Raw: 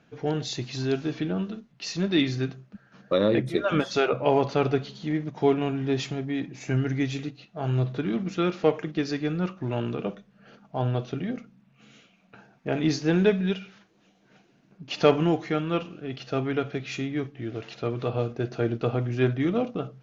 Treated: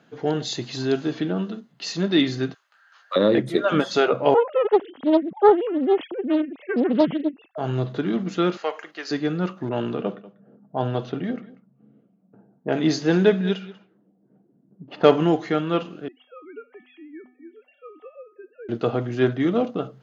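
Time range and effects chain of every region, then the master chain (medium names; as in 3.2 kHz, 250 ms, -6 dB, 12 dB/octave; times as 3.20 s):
2.54–3.16 s: high-pass 990 Hz 24 dB/octave + doubling 17 ms -6 dB
4.34–7.58 s: formants replaced by sine waves + tilt EQ -2 dB/octave + loudspeaker Doppler distortion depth 0.75 ms
8.57–9.11 s: high-pass 880 Hz + band-stop 3.5 kHz, Q 7.5
9.69–15.07 s: level-controlled noise filter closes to 320 Hz, open at -22.5 dBFS + delay 191 ms -19 dB
16.08–18.69 s: formants replaced by sine waves + feedback comb 250 Hz, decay 0.48 s, harmonics odd, mix 90%
whole clip: high-pass 170 Hz 12 dB/octave; peaking EQ 2.4 kHz -7.5 dB 0.23 oct; band-stop 5.6 kHz, Q 9.5; trim +4.5 dB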